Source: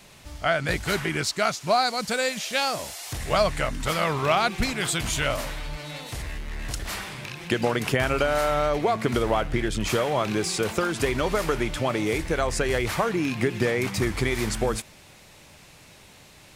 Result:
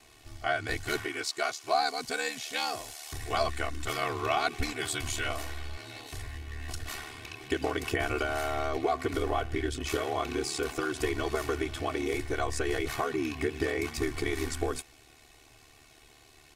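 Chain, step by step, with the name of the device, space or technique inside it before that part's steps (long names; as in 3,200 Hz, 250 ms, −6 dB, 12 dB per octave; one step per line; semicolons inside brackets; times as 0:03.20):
0:01.05–0:01.74: high-pass filter 310 Hz 12 dB per octave
ring-modulated robot voice (ring modulation 37 Hz; comb filter 2.7 ms, depth 88%)
level −6 dB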